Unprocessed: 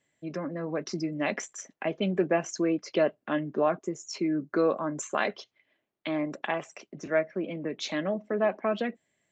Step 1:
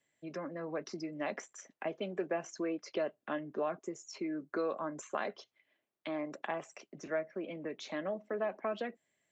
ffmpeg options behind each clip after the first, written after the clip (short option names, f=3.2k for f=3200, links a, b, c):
-filter_complex "[0:a]lowshelf=f=270:g=-5.5,acrossover=split=320|1700|4900[a][b][c][d];[a]acompressor=threshold=-43dB:ratio=4[e];[b]acompressor=threshold=-28dB:ratio=4[f];[c]acompressor=threshold=-48dB:ratio=4[g];[d]acompressor=threshold=-50dB:ratio=4[h];[e][f][g][h]amix=inputs=4:normalize=0,volume=-4dB"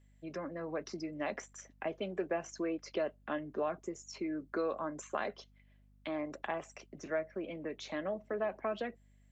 -af "aeval=exprs='val(0)+0.000708*(sin(2*PI*50*n/s)+sin(2*PI*2*50*n/s)/2+sin(2*PI*3*50*n/s)/3+sin(2*PI*4*50*n/s)/4+sin(2*PI*5*50*n/s)/5)':c=same"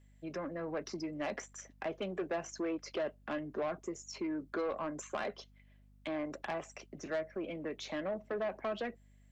-af "asoftclip=type=tanh:threshold=-31.5dB,volume=2dB"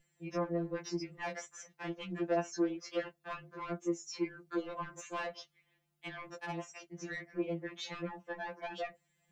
-af "afftfilt=real='re*2.83*eq(mod(b,8),0)':imag='im*2.83*eq(mod(b,8),0)':win_size=2048:overlap=0.75,volume=3dB"